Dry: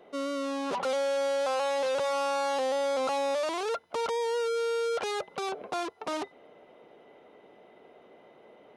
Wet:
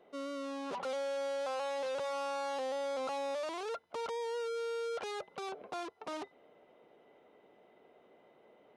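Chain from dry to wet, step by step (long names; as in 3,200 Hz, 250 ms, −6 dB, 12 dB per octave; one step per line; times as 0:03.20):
high-shelf EQ 7,600 Hz −4 dB
level −8 dB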